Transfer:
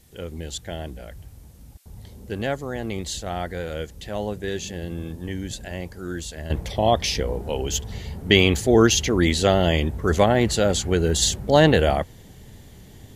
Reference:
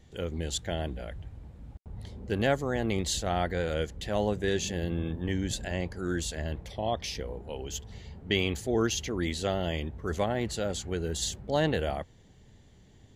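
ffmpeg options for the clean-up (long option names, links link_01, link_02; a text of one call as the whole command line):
ffmpeg -i in.wav -af "agate=range=-21dB:threshold=-36dB,asetnsamples=nb_out_samples=441:pad=0,asendcmd='6.5 volume volume -11.5dB',volume=0dB" out.wav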